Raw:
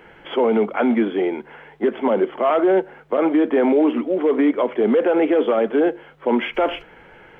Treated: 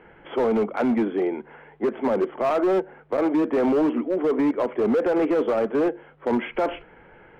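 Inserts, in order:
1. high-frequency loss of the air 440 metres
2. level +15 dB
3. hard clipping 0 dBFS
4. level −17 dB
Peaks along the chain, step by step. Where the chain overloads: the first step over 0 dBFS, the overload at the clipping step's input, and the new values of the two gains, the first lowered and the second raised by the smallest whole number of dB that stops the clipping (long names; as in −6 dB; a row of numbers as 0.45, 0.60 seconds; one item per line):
−10.5, +4.5, 0.0, −17.0 dBFS
step 2, 4.5 dB
step 2 +10 dB, step 4 −12 dB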